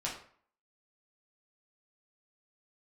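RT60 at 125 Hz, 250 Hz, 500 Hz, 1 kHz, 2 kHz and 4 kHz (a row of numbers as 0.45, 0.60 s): 0.50, 0.50, 0.50, 0.55, 0.45, 0.35 s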